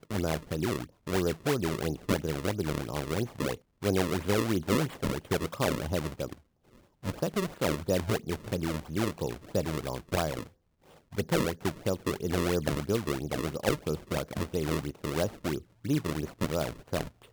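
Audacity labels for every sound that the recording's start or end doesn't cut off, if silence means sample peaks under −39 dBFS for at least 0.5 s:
7.050000	10.430000	sound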